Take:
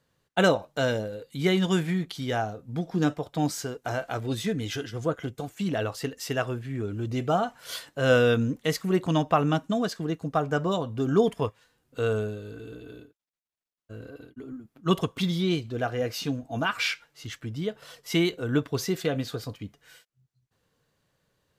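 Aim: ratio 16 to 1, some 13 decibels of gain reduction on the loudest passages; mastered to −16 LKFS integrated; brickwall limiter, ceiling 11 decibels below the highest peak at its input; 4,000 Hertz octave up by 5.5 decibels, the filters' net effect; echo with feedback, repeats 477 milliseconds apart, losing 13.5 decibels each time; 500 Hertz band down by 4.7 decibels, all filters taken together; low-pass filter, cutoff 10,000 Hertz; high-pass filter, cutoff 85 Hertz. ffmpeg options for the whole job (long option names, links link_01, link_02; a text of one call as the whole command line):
ffmpeg -i in.wav -af "highpass=85,lowpass=10000,equalizer=frequency=500:width_type=o:gain=-6,equalizer=frequency=4000:width_type=o:gain=7.5,acompressor=threshold=-31dB:ratio=16,alimiter=level_in=4dB:limit=-24dB:level=0:latency=1,volume=-4dB,aecho=1:1:477|954:0.211|0.0444,volume=22.5dB" out.wav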